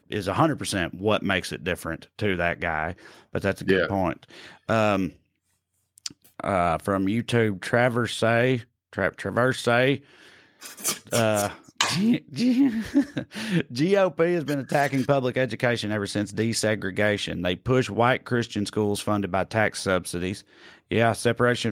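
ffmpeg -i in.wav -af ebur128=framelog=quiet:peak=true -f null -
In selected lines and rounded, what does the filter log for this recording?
Integrated loudness:
  I:         -24.6 LUFS
  Threshold: -35.0 LUFS
Loudness range:
  LRA:         3.4 LU
  Threshold: -45.1 LUFS
  LRA low:   -27.2 LUFS
  LRA high:  -23.8 LUFS
True peak:
  Peak:       -6.0 dBFS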